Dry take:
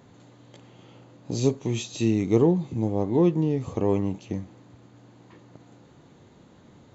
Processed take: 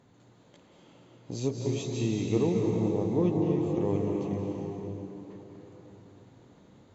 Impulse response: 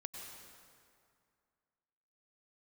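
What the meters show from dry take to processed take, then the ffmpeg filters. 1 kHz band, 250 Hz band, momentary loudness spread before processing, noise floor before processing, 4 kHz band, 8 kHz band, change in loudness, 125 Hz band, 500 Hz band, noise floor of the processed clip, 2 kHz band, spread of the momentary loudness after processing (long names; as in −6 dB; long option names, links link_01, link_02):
−4.5 dB, −4.0 dB, 12 LU, −54 dBFS, −4.5 dB, can't be measured, −4.5 dB, −3.5 dB, −3.5 dB, −59 dBFS, −4.5 dB, 16 LU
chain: -filter_complex "[1:a]atrim=start_sample=2205,asetrate=24696,aresample=44100[link_01];[0:a][link_01]afir=irnorm=-1:irlink=0,volume=-5.5dB"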